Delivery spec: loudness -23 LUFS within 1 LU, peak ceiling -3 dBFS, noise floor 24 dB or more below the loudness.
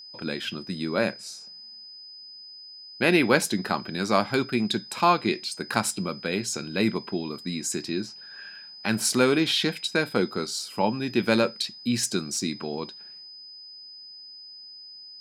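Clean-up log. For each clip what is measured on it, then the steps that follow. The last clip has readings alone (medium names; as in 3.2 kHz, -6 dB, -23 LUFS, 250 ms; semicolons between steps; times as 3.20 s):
steady tone 5 kHz; tone level -42 dBFS; loudness -26.0 LUFS; peak level -4.5 dBFS; loudness target -23.0 LUFS
-> band-stop 5 kHz, Q 30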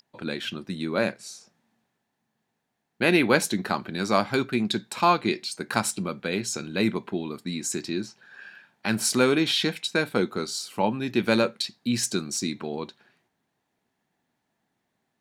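steady tone not found; loudness -26.0 LUFS; peak level -4.5 dBFS; loudness target -23.0 LUFS
-> trim +3 dB; peak limiter -3 dBFS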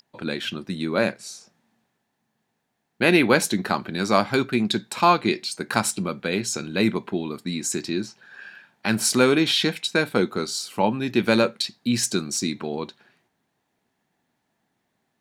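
loudness -23.0 LUFS; peak level -3.0 dBFS; noise floor -75 dBFS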